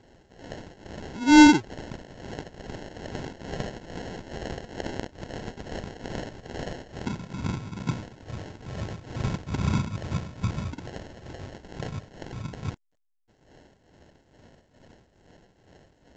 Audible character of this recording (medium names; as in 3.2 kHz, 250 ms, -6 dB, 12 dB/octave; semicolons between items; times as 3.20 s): phasing stages 4, 1.6 Hz, lowest notch 580–1900 Hz; aliases and images of a low sample rate 1.2 kHz, jitter 0%; tremolo triangle 2.3 Hz, depth 80%; A-law